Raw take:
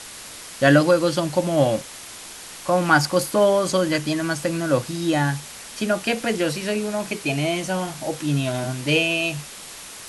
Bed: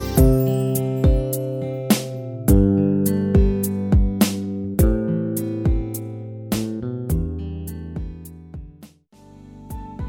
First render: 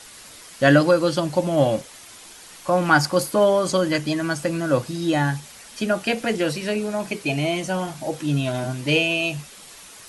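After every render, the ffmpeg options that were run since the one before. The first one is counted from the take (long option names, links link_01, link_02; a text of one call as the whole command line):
ffmpeg -i in.wav -af "afftdn=noise_reduction=7:noise_floor=-39" out.wav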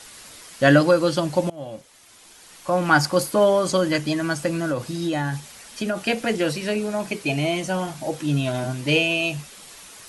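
ffmpeg -i in.wav -filter_complex "[0:a]asettb=1/sr,asplit=3[link_01][link_02][link_03];[link_01]atrim=end=4.644[link_04];[link_02]atrim=start=4.64:end=5.99,asetpts=PTS-STARTPTS,afade=type=in:duration=0.004:curve=qsin,afade=type=out:start_time=1.346:duration=0.004:curve=qsin,acompressor=threshold=-20dB:ratio=6:attack=3.2:release=140:knee=1:detection=peak[link_05];[link_03]atrim=start=5.986[link_06];[link_04][link_05]acrossfade=duration=0.004:curve1=hsin:curve2=qsin[link_07];[link_07][link_06]acrossfade=duration=0.004:curve1=qsin:curve2=hsin,asplit=2[link_08][link_09];[link_08]atrim=end=1.5,asetpts=PTS-STARTPTS,afade=type=out:start_time=1.496:duration=0.004:curve=hsin:silence=0.0749894[link_10];[link_09]atrim=start=1.5,asetpts=PTS-STARTPTS,afade=type=in:duration=1.54:silence=0.0749894[link_11];[link_10][link_11]concat=n=2:v=0:a=1" out.wav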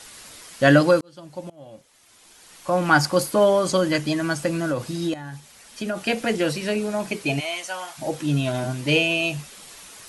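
ffmpeg -i in.wav -filter_complex "[0:a]asplit=3[link_01][link_02][link_03];[link_01]afade=type=out:start_time=7.39:duration=0.02[link_04];[link_02]highpass=890,afade=type=in:start_time=7.39:duration=0.02,afade=type=out:start_time=7.97:duration=0.02[link_05];[link_03]afade=type=in:start_time=7.97:duration=0.02[link_06];[link_04][link_05][link_06]amix=inputs=3:normalize=0,asplit=3[link_07][link_08][link_09];[link_07]atrim=end=1.01,asetpts=PTS-STARTPTS,afade=type=out:start_time=1.006:duration=0.004:curve=hsin[link_10];[link_08]atrim=start=1.01:end=5.14,asetpts=PTS-STARTPTS,afade=type=in:duration=1.76,afade=type=out:start_time=4.126:duration=0.004:curve=hsin:silence=0.211349[link_11];[link_09]atrim=start=5.14,asetpts=PTS-STARTPTS,afade=type=in:duration=1.05:silence=0.211349[link_12];[link_10][link_11][link_12]concat=n=3:v=0:a=1" out.wav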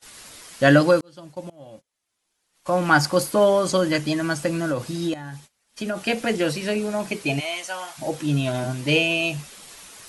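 ffmpeg -i in.wav -af "agate=range=-24dB:threshold=-44dB:ratio=16:detection=peak" out.wav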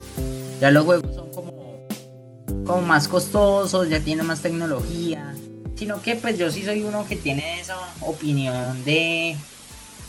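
ffmpeg -i in.wav -i bed.wav -filter_complex "[1:a]volume=-14dB[link_01];[0:a][link_01]amix=inputs=2:normalize=0" out.wav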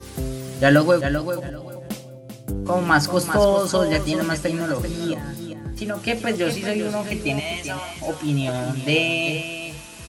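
ffmpeg -i in.wav -af "aecho=1:1:391|782|1173:0.355|0.0639|0.0115" out.wav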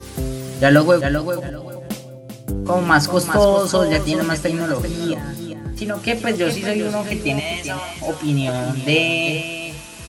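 ffmpeg -i in.wav -af "volume=3dB,alimiter=limit=-1dB:level=0:latency=1" out.wav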